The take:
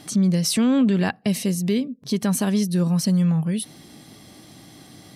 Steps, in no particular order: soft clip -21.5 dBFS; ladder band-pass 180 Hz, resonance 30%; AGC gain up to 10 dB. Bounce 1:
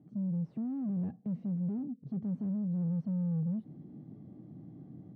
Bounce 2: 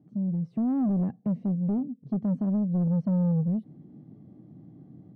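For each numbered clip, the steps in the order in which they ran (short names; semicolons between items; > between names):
AGC > soft clip > ladder band-pass; AGC > ladder band-pass > soft clip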